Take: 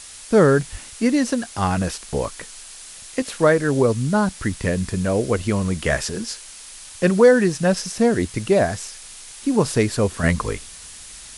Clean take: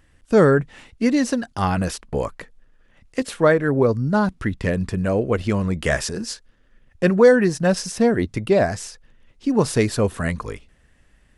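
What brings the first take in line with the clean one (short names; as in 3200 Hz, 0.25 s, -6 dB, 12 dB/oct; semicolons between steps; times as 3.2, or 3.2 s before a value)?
0.71–0.83 HPF 140 Hz 24 dB/oct; noise print and reduce 15 dB; 10.23 gain correction -5.5 dB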